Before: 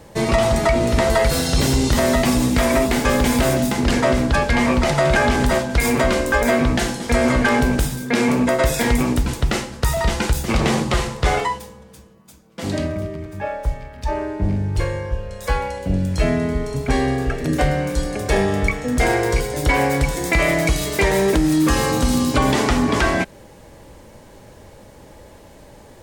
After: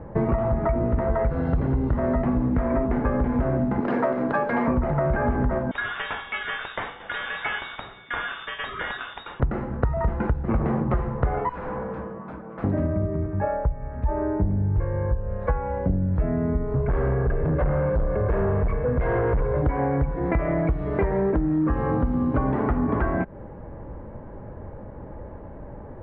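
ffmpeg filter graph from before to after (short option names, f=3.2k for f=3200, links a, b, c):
-filter_complex "[0:a]asettb=1/sr,asplit=3[a][b][c];[a]atrim=end=3.804[d];[b]atrim=start=3.8:end=4.68,asetpts=PTS-STARTPTS,afade=t=in:d=0.004:c=qsin,afade=t=out:st=0.876:d=0.004:c=qsin,highpass=f=140:w=0.5412,highpass=f=140:w=1.3066,bass=f=250:g=-11,treble=f=4k:g=14,acrusher=bits=6:dc=4:mix=0:aa=0.000001[e];[c]atrim=start=4.676[f];[d][e]acrossfade=d=0.004:c1=hsin:c2=qsin[g];[g][f]acrossfade=d=0.004:c1=qsin:c2=hsin,asettb=1/sr,asplit=3[h][i][j];[h]atrim=end=5.714[k];[i]atrim=start=5.71:end=9.4,asetpts=PTS-STARTPTS,afade=t=in:d=0.004:c=qsin,afade=t=out:st=3.686:d=0.004:c=qsin,equalizer=f=950:w=4.1:g=6.5,lowpass=f=3.2k:t=q:w=0.5098,lowpass=f=3.2k:t=q:w=0.6013,lowpass=f=3.2k:t=q:w=0.9,lowpass=f=3.2k:t=q:w=2.563,afreqshift=-3800[l];[j]atrim=start=9.396[m];[k][l]acrossfade=d=0.004:c1=hsin:c2=qsin[n];[n][m]acrossfade=d=0.004:c1=qsin:c2=hsin,asettb=1/sr,asplit=3[o][p][q];[o]atrim=end=11.494[r];[p]atrim=start=11.49:end=12.64,asetpts=PTS-STARTPTS,afade=t=in:d=0.004:c=qsin,afade=t=out:st=1.146:d=0.004:c=qsin,asplit=2[s][t];[t]highpass=f=720:p=1,volume=25dB,asoftclip=type=tanh:threshold=-13.5dB[u];[s][u]amix=inputs=2:normalize=0,lowpass=f=2.7k:p=1,volume=-6dB,aeval=exprs='0.0398*(abs(mod(val(0)/0.0398+3,4)-2)-1)':c=same[v];[q]atrim=start=12.636[w];[r][v]acrossfade=d=0.004:c1=hsin:c2=qsin[x];[x][w]acrossfade=d=0.004:c1=qsin:c2=hsin,asettb=1/sr,asplit=3[y][z][aa];[y]atrim=end=16.754[ab];[z]atrim=start=16.75:end=19.62,asetpts=PTS-STARTPTS,afade=t=in:d=0.004:c=qsin,afade=t=out:st=2.866:d=0.004:c=qsin,aecho=1:1:1.9:0.76,atrim=end_sample=126567,asoftclip=type=hard:threshold=-20dB[ac];[aa]atrim=start=19.616[ad];[ab][ac]acrossfade=d=0.004:c1=hsin:c2=qsin[ae];[ae][ad]acrossfade=d=0.004:c1=qsin:c2=hsin,lowpass=f=1.5k:w=0.5412,lowpass=f=1.5k:w=1.3066,lowshelf=f=230:g=6,acompressor=threshold=-22dB:ratio=6,volume=2dB"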